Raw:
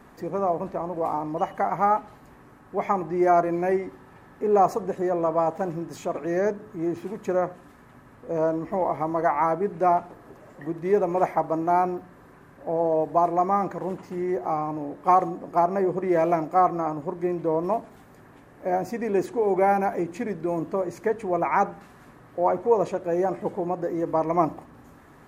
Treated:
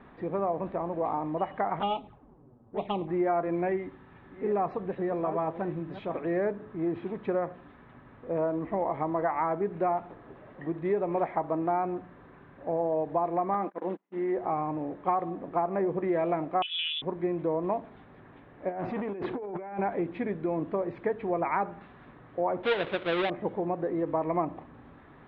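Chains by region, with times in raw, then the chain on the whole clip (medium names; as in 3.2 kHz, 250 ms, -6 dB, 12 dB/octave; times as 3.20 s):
1.79–3.08 s: median filter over 25 samples + level-controlled noise filter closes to 600 Hz, open at -20.5 dBFS + touch-sensitive flanger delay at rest 10.7 ms, full sweep at -24 dBFS
3.68–6.14 s: chunks repeated in reverse 423 ms, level -11.5 dB + peaking EQ 630 Hz -4.5 dB 2 oct
13.54–14.38 s: gate -33 dBFS, range -35 dB + brick-wall FIR high-pass 180 Hz
16.62–17.02 s: compression, threshold -24 dBFS + frequency inversion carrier 3.7 kHz
18.69–19.79 s: compressor with a negative ratio -32 dBFS + transformer saturation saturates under 760 Hz
22.63–23.30 s: square wave that keeps the level + bass shelf 240 Hz -9 dB
whole clip: Chebyshev low-pass 3.7 kHz, order 5; compression 4:1, threshold -23 dBFS; trim -1.5 dB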